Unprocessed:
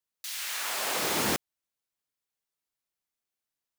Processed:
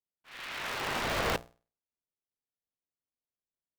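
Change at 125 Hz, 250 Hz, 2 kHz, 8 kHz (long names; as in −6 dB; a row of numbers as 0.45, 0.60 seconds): +1.5, −4.5, −1.0, −13.0 decibels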